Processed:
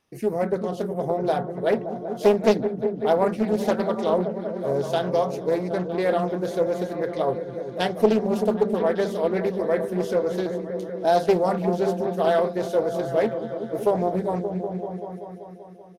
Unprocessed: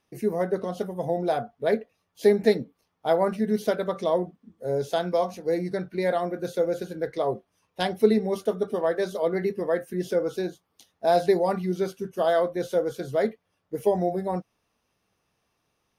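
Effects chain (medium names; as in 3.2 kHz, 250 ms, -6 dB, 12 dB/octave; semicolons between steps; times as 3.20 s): resampled via 32 kHz; delay with an opening low-pass 192 ms, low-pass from 200 Hz, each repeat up 1 oct, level -3 dB; loudspeaker Doppler distortion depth 0.41 ms; trim +1.5 dB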